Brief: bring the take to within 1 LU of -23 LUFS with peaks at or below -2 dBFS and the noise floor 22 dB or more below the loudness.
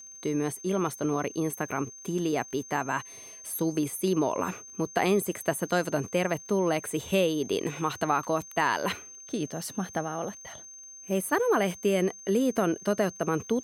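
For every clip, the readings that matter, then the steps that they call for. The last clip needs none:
tick rate 40 per s; steady tone 6.3 kHz; tone level -44 dBFS; loudness -29.0 LUFS; peak level -12.0 dBFS; loudness target -23.0 LUFS
-> de-click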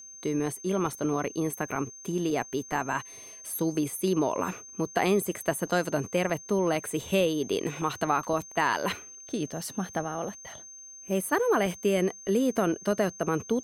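tick rate 0.59 per s; steady tone 6.3 kHz; tone level -44 dBFS
-> band-stop 6.3 kHz, Q 30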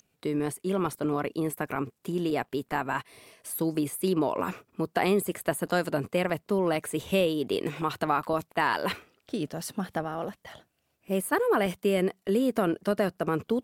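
steady tone not found; loudness -29.0 LUFS; peak level -12.0 dBFS; loudness target -23.0 LUFS
-> trim +6 dB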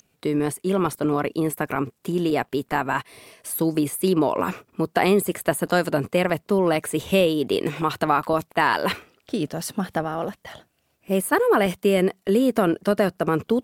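loudness -23.0 LUFS; peak level -6.0 dBFS; noise floor -70 dBFS

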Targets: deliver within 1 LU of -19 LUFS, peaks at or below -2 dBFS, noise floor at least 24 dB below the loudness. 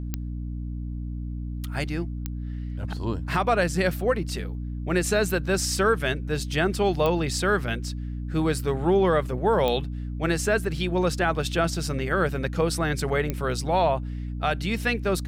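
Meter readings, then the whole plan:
clicks found 5; hum 60 Hz; highest harmonic 300 Hz; hum level -29 dBFS; loudness -26.0 LUFS; peak level -10.5 dBFS; loudness target -19.0 LUFS
-> de-click; hum notches 60/120/180/240/300 Hz; trim +7 dB

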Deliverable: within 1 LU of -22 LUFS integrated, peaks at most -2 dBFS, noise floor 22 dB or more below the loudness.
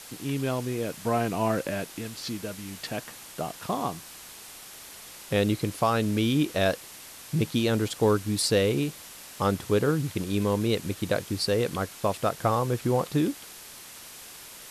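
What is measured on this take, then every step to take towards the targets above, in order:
noise floor -45 dBFS; noise floor target -50 dBFS; loudness -27.5 LUFS; peak level -11.0 dBFS; loudness target -22.0 LUFS
-> noise reduction 6 dB, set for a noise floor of -45 dBFS; trim +5.5 dB

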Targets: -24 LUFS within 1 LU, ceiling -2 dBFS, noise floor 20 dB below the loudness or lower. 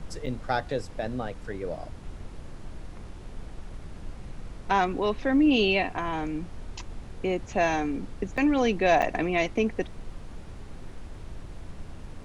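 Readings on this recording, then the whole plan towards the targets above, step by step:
dropouts 3; longest dropout 6.4 ms; noise floor -43 dBFS; noise floor target -47 dBFS; loudness -27.0 LUFS; peak level -10.5 dBFS; loudness target -24.0 LUFS
-> interpolate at 0.26/8.37/9.02 s, 6.4 ms; noise print and reduce 6 dB; trim +3 dB

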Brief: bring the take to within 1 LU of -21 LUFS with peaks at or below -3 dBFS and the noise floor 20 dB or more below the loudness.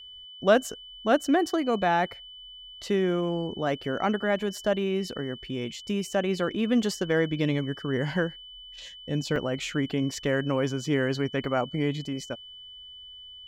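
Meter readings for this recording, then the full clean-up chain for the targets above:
dropouts 2; longest dropout 2.0 ms; steady tone 3 kHz; tone level -43 dBFS; loudness -27.5 LUFS; peak level -6.5 dBFS; loudness target -21.0 LUFS
-> interpolate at 9.36/10.12 s, 2 ms; band-stop 3 kHz, Q 30; trim +6.5 dB; peak limiter -3 dBFS

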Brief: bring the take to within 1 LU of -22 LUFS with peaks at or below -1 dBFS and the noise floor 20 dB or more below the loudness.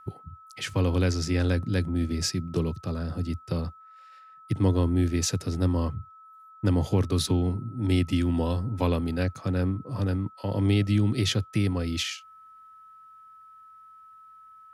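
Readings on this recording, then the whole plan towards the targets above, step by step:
steady tone 1.3 kHz; tone level -48 dBFS; loudness -27.0 LUFS; peak level -11.0 dBFS; loudness target -22.0 LUFS
-> band-stop 1.3 kHz, Q 30; trim +5 dB

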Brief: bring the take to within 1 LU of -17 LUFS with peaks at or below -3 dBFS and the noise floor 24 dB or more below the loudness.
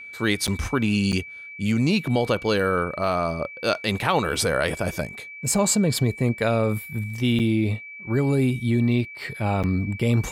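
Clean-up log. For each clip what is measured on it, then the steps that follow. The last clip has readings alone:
dropouts 4; longest dropout 7.4 ms; steady tone 2.3 kHz; tone level -37 dBFS; loudness -23.5 LUFS; peak level -7.5 dBFS; loudness target -17.0 LUFS
-> interpolate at 0.47/1.12/7.39/9.63 s, 7.4 ms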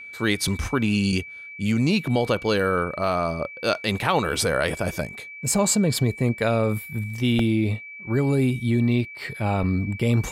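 dropouts 0; steady tone 2.3 kHz; tone level -37 dBFS
-> band-stop 2.3 kHz, Q 30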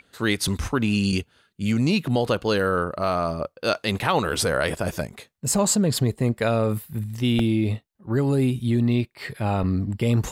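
steady tone not found; loudness -23.5 LUFS; peak level -8.0 dBFS; loudness target -17.0 LUFS
-> trim +6.5 dB; peak limiter -3 dBFS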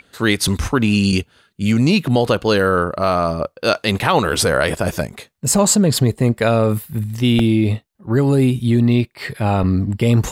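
loudness -17.0 LUFS; peak level -3.0 dBFS; noise floor -61 dBFS

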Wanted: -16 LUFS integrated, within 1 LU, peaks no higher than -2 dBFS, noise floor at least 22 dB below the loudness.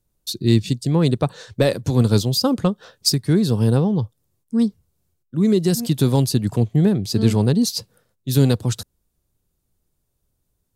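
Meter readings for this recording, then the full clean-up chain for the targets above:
loudness -19.5 LUFS; peak level -4.0 dBFS; loudness target -16.0 LUFS
-> trim +3.5 dB; peak limiter -2 dBFS

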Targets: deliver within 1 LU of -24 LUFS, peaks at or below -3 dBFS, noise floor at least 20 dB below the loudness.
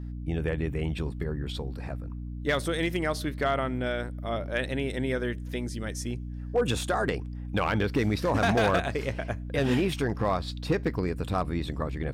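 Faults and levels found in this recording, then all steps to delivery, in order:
clipped samples 0.5%; clipping level -17.5 dBFS; hum 60 Hz; highest harmonic 300 Hz; hum level -34 dBFS; loudness -29.5 LUFS; peak level -17.5 dBFS; loudness target -24.0 LUFS
-> clip repair -17.5 dBFS; hum notches 60/120/180/240/300 Hz; trim +5.5 dB

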